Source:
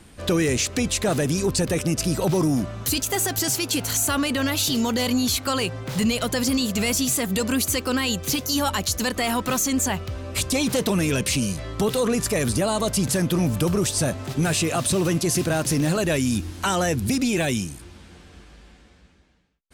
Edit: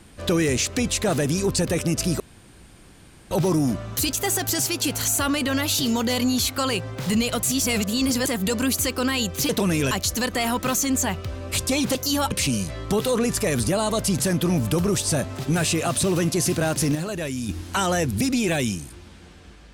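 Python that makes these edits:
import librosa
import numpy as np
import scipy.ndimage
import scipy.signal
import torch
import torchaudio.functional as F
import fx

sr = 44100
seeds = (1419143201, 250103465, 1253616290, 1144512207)

y = fx.edit(x, sr, fx.insert_room_tone(at_s=2.2, length_s=1.11),
    fx.reverse_span(start_s=6.32, length_s=0.84),
    fx.swap(start_s=8.38, length_s=0.36, other_s=10.78, other_length_s=0.42),
    fx.clip_gain(start_s=15.84, length_s=0.54, db=-6.5), tone=tone)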